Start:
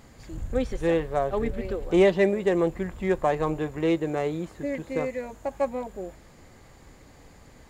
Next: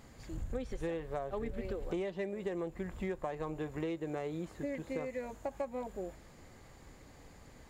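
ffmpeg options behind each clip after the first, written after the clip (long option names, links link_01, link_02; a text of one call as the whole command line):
ffmpeg -i in.wav -af "acompressor=threshold=-29dB:ratio=16,volume=-4.5dB" out.wav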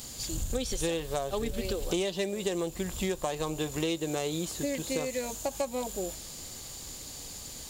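ffmpeg -i in.wav -af "aexciter=amount=5.8:drive=6.8:freq=2900,volume=6dB" out.wav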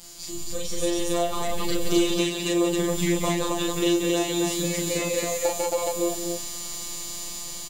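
ffmpeg -i in.wav -af "afftfilt=real='hypot(re,im)*cos(PI*b)':imag='0':win_size=1024:overlap=0.75,aecho=1:1:37.9|180.8|271.1:0.891|0.501|0.891,dynaudnorm=framelen=380:gausssize=5:maxgain=7.5dB" out.wav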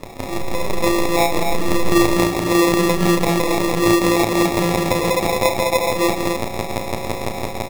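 ffmpeg -i in.wav -filter_complex "[0:a]asplit=2[link_01][link_02];[link_02]alimiter=limit=-18dB:level=0:latency=1,volume=-1.5dB[link_03];[link_01][link_03]amix=inputs=2:normalize=0,acrusher=samples=29:mix=1:aa=0.000001,volume=4.5dB" out.wav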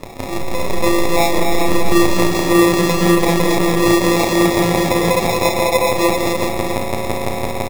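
ffmpeg -i in.wav -filter_complex "[0:a]asoftclip=type=tanh:threshold=-4.5dB,asplit=2[link_01][link_02];[link_02]aecho=0:1:394:0.531[link_03];[link_01][link_03]amix=inputs=2:normalize=0,volume=2dB" out.wav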